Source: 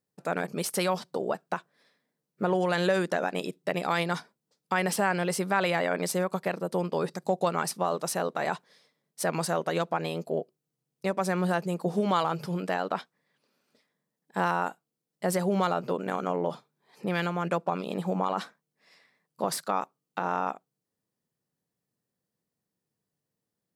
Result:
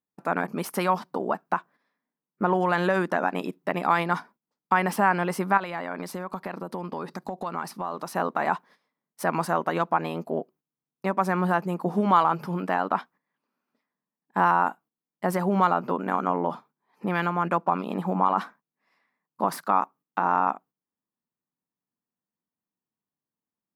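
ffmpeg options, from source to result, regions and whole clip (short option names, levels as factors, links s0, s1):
-filter_complex "[0:a]asettb=1/sr,asplit=3[s0][s1][s2];[s0]atrim=end=5.574[s3];[s1]atrim=start=5.57:end=8.15,asetpts=PTS-STARTPTS,afade=t=in:d=0.004:c=qsin,afade=t=out:st=2.576:d=0.004:c=qsin,equalizer=f=4300:w=2:g=5,acompressor=threshold=0.0282:ratio=5:attack=3.2:release=140:knee=1:detection=peak[s4];[s2]atrim=start=8.146[s5];[s3][s4]acrossfade=d=0.004:c1=hsin:c2=qsin[s6];[s6][s5]acrossfade=d=0.004:c1=qsin:c2=hsin,agate=range=0.282:threshold=0.002:ratio=16:detection=peak,equalizer=f=125:t=o:w=1:g=-7,equalizer=f=250:t=o:w=1:g=6,equalizer=f=500:t=o:w=1:g=-6,equalizer=f=1000:t=o:w=1:g=8,equalizer=f=4000:t=o:w=1:g=-7,equalizer=f=8000:t=o:w=1:g=-10,volume=1.33"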